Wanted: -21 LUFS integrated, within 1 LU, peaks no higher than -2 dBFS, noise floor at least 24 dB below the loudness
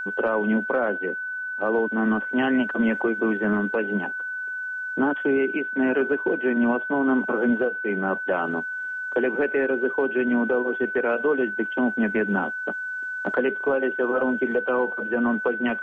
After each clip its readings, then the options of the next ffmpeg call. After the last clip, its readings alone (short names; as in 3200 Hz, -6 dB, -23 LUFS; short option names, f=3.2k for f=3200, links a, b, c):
steady tone 1500 Hz; tone level -28 dBFS; loudness -24.0 LUFS; peak -10.0 dBFS; loudness target -21.0 LUFS
-> -af "bandreject=f=1.5k:w=30"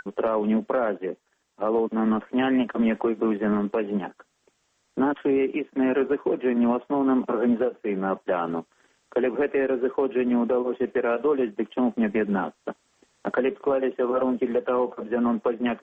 steady tone none; loudness -25.0 LUFS; peak -11.5 dBFS; loudness target -21.0 LUFS
-> -af "volume=4dB"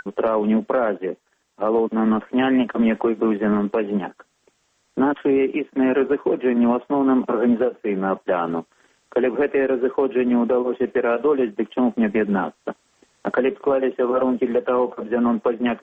loudness -21.0 LUFS; peak -7.5 dBFS; noise floor -67 dBFS